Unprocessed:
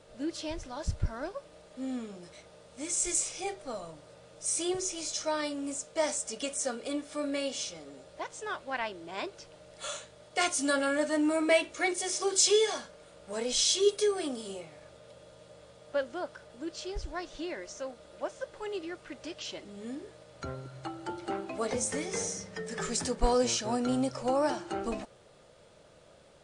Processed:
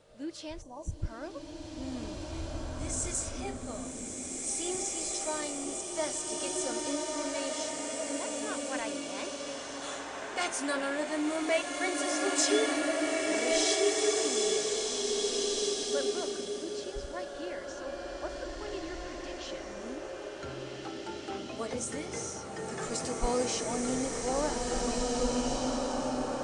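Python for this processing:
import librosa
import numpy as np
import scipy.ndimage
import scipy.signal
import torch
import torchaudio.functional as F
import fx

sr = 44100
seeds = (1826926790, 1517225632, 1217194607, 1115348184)

y = fx.spec_erase(x, sr, start_s=0.62, length_s=0.41, low_hz=1200.0, high_hz=5700.0)
y = fx.dmg_tone(y, sr, hz=2400.0, level_db=-55.0, at=(17.86, 18.4), fade=0.02)
y = fx.rev_bloom(y, sr, seeds[0], attack_ms=2030, drr_db=-3.0)
y = F.gain(torch.from_numpy(y), -4.5).numpy()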